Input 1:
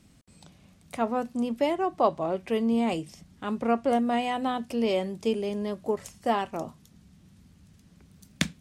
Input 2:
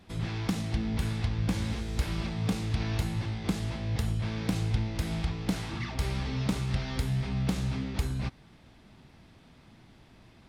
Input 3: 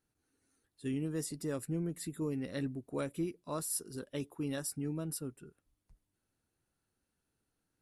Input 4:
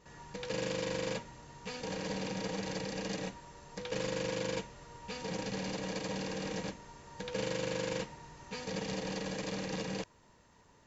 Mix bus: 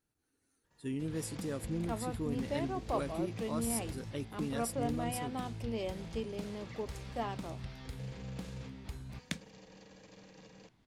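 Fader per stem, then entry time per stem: -12.0, -14.0, -1.5, -18.5 dB; 0.90, 0.90, 0.00, 0.65 s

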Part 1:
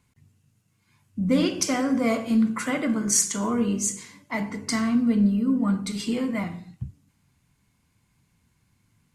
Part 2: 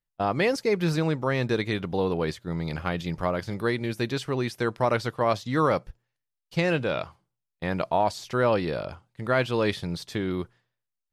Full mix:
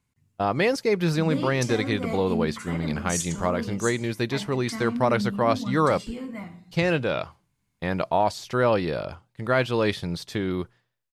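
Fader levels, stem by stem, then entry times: -8.5, +1.5 dB; 0.00, 0.20 s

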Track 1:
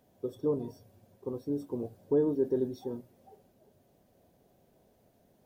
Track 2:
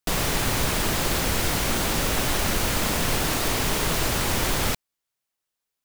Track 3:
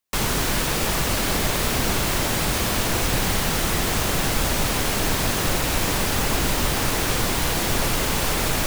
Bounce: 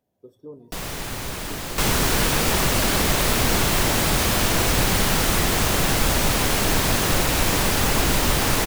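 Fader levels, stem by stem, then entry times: -10.5, -6.5, +2.0 dB; 0.00, 0.65, 1.65 s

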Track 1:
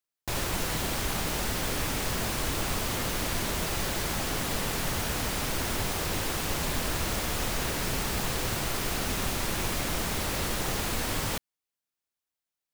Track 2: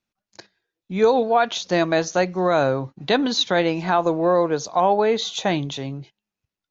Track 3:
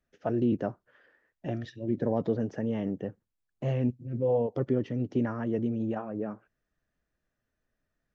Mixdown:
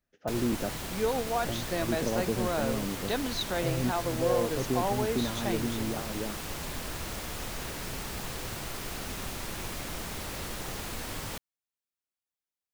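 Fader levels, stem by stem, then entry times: -7.0, -12.5, -3.0 dB; 0.00, 0.00, 0.00 s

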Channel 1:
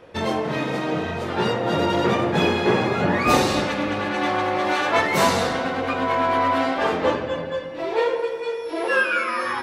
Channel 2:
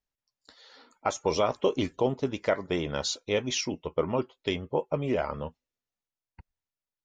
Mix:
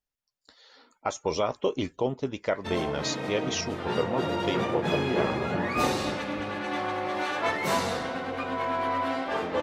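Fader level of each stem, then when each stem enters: -8.0, -1.5 dB; 2.50, 0.00 s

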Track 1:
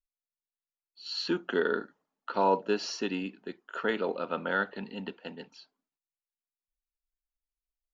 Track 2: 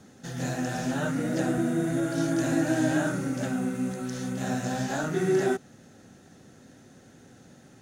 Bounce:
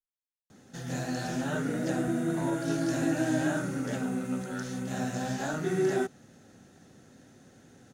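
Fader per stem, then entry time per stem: -14.0, -3.0 dB; 0.00, 0.50 s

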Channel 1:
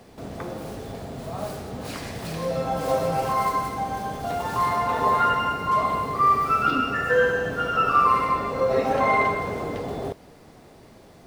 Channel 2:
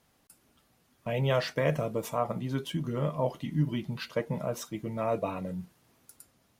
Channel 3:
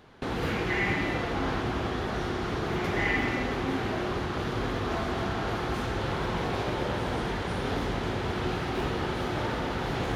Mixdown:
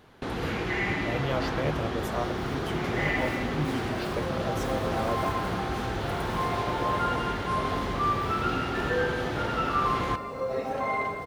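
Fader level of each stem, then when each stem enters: -8.5, -3.5, -1.0 dB; 1.80, 0.00, 0.00 s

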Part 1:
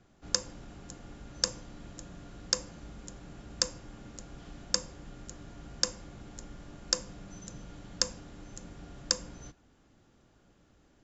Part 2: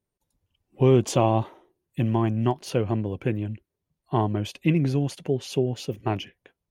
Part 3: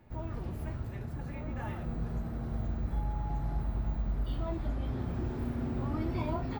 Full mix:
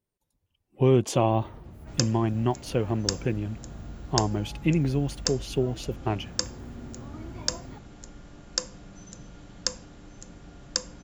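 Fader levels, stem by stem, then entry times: +0.5, -2.0, -7.5 dB; 1.65, 0.00, 1.20 s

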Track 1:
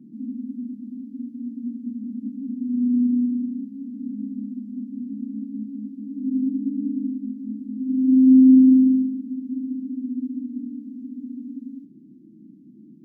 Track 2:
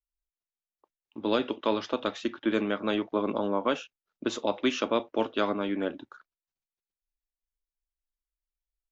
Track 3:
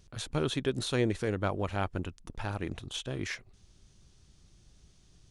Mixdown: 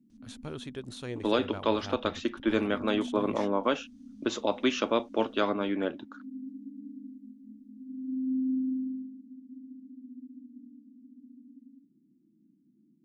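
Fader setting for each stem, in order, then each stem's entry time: -18.0, 0.0, -9.5 dB; 0.00, 0.00, 0.10 s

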